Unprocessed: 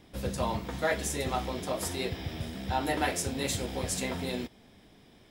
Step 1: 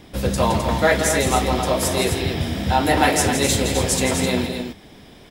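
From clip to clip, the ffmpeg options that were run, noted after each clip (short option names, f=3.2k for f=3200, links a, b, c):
-filter_complex "[0:a]acontrast=84,asplit=2[a][b];[b]aecho=0:1:166.2|259.5:0.398|0.447[c];[a][c]amix=inputs=2:normalize=0,volume=4.5dB"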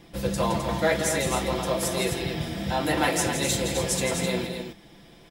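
-af "aecho=1:1:5.9:0.56,volume=-7dB"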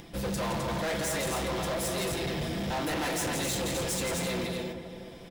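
-filter_complex "[0:a]acompressor=mode=upward:threshold=-44dB:ratio=2.5,asplit=2[a][b];[b]adelay=367,lowpass=f=1.5k:p=1,volume=-12dB,asplit=2[c][d];[d]adelay=367,lowpass=f=1.5k:p=1,volume=0.49,asplit=2[e][f];[f]adelay=367,lowpass=f=1.5k:p=1,volume=0.49,asplit=2[g][h];[h]adelay=367,lowpass=f=1.5k:p=1,volume=0.49,asplit=2[i][j];[j]adelay=367,lowpass=f=1.5k:p=1,volume=0.49[k];[a][c][e][g][i][k]amix=inputs=6:normalize=0,volume=29dB,asoftclip=hard,volume=-29dB"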